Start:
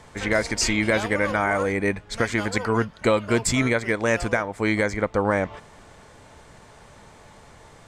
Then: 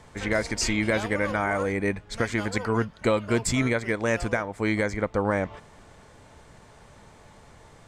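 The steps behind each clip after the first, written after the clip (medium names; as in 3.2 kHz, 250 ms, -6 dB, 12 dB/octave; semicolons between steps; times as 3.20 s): bass shelf 330 Hz +3 dB; trim -4 dB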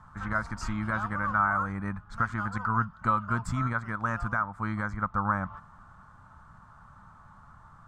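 FFT filter 190 Hz 0 dB, 440 Hz -21 dB, 1.3 kHz +11 dB, 2.1 kHz -16 dB; trim -1.5 dB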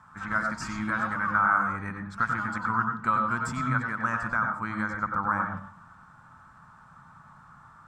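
reverberation RT60 0.40 s, pre-delay 89 ms, DRR 5 dB; trim +2 dB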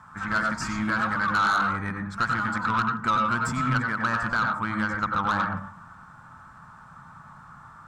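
saturation -22.5 dBFS, distortion -12 dB; trim +5 dB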